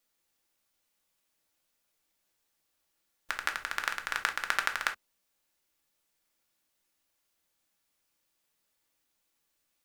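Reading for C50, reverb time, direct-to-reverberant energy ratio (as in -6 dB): 14.0 dB, not exponential, 4.0 dB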